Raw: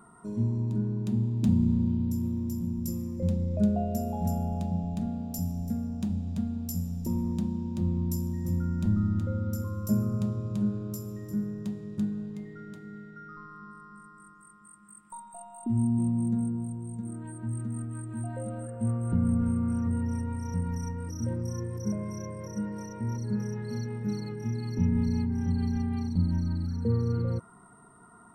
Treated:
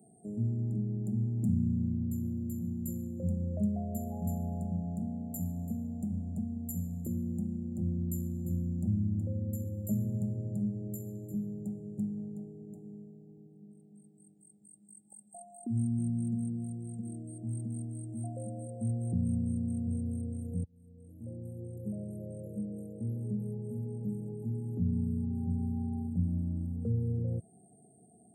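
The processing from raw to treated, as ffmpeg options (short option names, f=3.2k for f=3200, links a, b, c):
-filter_complex "[0:a]asplit=2[a][b];[a]atrim=end=20.64,asetpts=PTS-STARTPTS,afade=t=out:st=20.636:d=0.004:c=hsin[c];[b]atrim=start=20.64,asetpts=PTS-STARTPTS,afade=t=in:d=1.73[d];[c][d]concat=n=2:v=0:a=1,highpass=f=81:w=0.5412,highpass=f=81:w=1.3066,afftfilt=real='re*(1-between(b*sr/4096,830,6900))':imag='im*(1-between(b*sr/4096,830,6900))':win_size=4096:overlap=0.75,acrossover=split=220|3000[e][f][g];[f]acompressor=threshold=-38dB:ratio=6[h];[e][h][g]amix=inputs=3:normalize=0,volume=-3dB"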